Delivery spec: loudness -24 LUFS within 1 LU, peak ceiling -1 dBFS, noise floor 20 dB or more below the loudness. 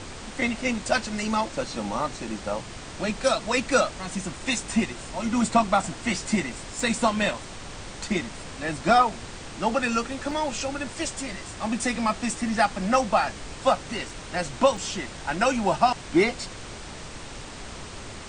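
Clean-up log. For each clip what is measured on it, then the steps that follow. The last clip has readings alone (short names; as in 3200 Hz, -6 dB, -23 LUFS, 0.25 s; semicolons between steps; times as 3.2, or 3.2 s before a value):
dropouts 4; longest dropout 2.7 ms; noise floor -40 dBFS; noise floor target -46 dBFS; loudness -26.0 LUFS; peak -8.0 dBFS; loudness target -24.0 LUFS
-> interpolate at 6.8/10.31/14.09/14.77, 2.7 ms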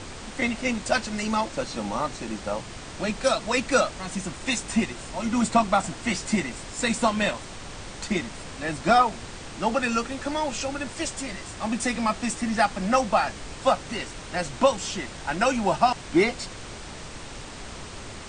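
dropouts 0; noise floor -40 dBFS; noise floor target -46 dBFS
-> noise print and reduce 6 dB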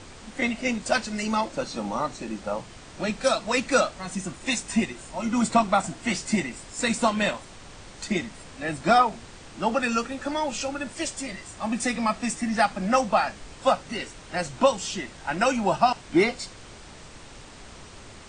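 noise floor -45 dBFS; noise floor target -46 dBFS
-> noise print and reduce 6 dB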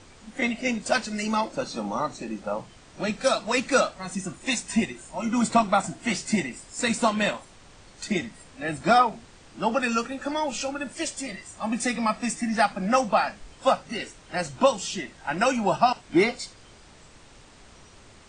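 noise floor -51 dBFS; loudness -26.0 LUFS; peak -8.0 dBFS; loudness target -24.0 LUFS
-> gain +2 dB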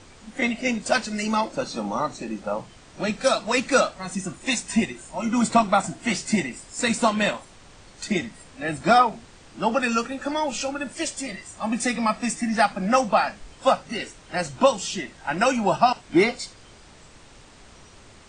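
loudness -24.0 LUFS; peak -6.0 dBFS; noise floor -49 dBFS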